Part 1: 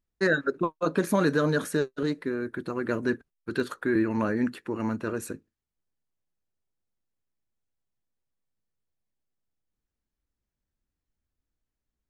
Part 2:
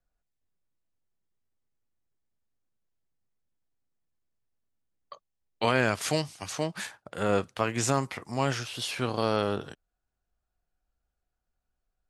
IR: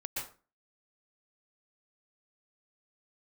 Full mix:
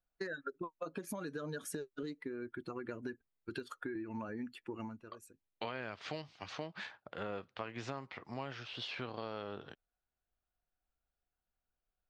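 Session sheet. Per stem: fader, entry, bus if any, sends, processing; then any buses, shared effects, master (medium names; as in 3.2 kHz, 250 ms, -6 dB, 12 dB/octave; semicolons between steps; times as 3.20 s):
+0.5 dB, 0.00 s, no send, expander on every frequency bin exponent 1.5; compression, threshold -31 dBFS, peak gain reduction 10.5 dB; auto duck -17 dB, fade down 0.30 s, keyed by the second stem
-5.0 dB, 0.00 s, no send, low-pass 4.2 kHz 24 dB/octave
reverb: none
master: bass shelf 230 Hz -5 dB; compression 4:1, threshold -39 dBFS, peak gain reduction 12.5 dB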